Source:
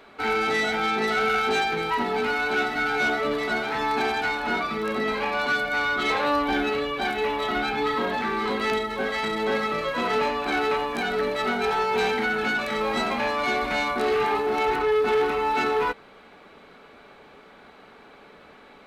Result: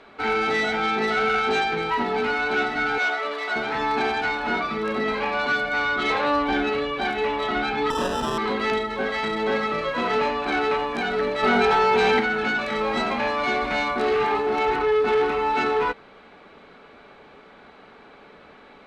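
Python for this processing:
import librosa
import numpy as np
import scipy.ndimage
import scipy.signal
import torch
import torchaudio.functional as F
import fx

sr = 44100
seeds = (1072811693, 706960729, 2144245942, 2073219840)

y = fx.highpass(x, sr, hz=620.0, slope=12, at=(2.98, 3.56))
y = fx.sample_hold(y, sr, seeds[0], rate_hz=2200.0, jitter_pct=0, at=(7.9, 8.38))
y = fx.air_absorb(y, sr, metres=62.0)
y = fx.env_flatten(y, sr, amount_pct=100, at=(11.42, 12.19), fade=0.02)
y = y * librosa.db_to_amplitude(1.5)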